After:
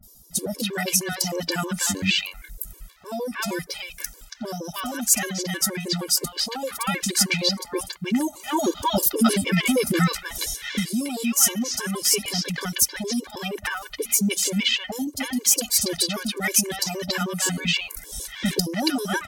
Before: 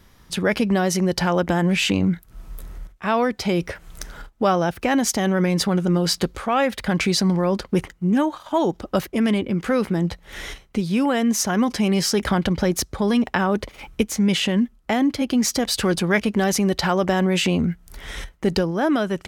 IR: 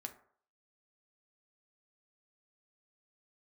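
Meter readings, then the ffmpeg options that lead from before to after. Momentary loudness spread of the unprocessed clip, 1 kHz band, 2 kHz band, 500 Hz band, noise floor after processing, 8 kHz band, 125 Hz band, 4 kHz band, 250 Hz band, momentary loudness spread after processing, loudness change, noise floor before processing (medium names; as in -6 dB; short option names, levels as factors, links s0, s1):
11 LU, -6.0 dB, -1.5 dB, -7.5 dB, -47 dBFS, +7.0 dB, -7.0 dB, +2.5 dB, -6.5 dB, 12 LU, -2.0 dB, -53 dBFS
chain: -filter_complex "[0:a]acrossover=split=800|4800[s0][s1][s2];[s2]adelay=30[s3];[s1]adelay=310[s4];[s0][s4][s3]amix=inputs=3:normalize=0,crystalizer=i=7.5:c=0,dynaudnorm=f=290:g=7:m=3.76,asplit=2[s5][s6];[1:a]atrim=start_sample=2205[s7];[s6][s7]afir=irnorm=-1:irlink=0,volume=0.237[s8];[s5][s8]amix=inputs=2:normalize=0,afftfilt=real='re*gt(sin(2*PI*6.4*pts/sr)*(1-2*mod(floor(b*sr/1024/300),2)),0)':imag='im*gt(sin(2*PI*6.4*pts/sr)*(1-2*mod(floor(b*sr/1024/300),2)),0)':win_size=1024:overlap=0.75,volume=0.841"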